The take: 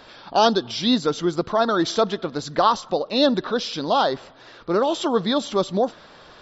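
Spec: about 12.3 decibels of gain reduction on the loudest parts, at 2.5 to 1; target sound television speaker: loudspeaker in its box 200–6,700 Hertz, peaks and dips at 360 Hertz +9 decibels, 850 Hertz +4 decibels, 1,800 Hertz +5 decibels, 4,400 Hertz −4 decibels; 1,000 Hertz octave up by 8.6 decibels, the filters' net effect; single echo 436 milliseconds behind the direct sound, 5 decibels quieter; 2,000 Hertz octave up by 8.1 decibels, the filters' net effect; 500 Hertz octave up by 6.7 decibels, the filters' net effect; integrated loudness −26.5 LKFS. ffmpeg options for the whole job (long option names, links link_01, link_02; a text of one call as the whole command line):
ffmpeg -i in.wav -af "equalizer=frequency=500:width_type=o:gain=3,equalizer=frequency=1000:width_type=o:gain=5.5,equalizer=frequency=2000:width_type=o:gain=5,acompressor=threshold=-26dB:ratio=2.5,highpass=frequency=200:width=0.5412,highpass=frequency=200:width=1.3066,equalizer=frequency=360:width_type=q:width=4:gain=9,equalizer=frequency=850:width_type=q:width=4:gain=4,equalizer=frequency=1800:width_type=q:width=4:gain=5,equalizer=frequency=4400:width_type=q:width=4:gain=-4,lowpass=frequency=6700:width=0.5412,lowpass=frequency=6700:width=1.3066,aecho=1:1:436:0.562,volume=-3dB" out.wav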